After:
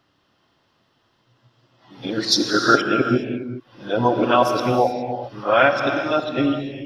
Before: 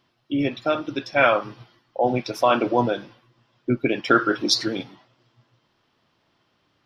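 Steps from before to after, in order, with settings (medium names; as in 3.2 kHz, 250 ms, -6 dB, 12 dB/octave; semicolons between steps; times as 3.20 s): reverse the whole clip; band-stop 2.3 kHz, Q 10; gated-style reverb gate 440 ms flat, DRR 5 dB; trim +2 dB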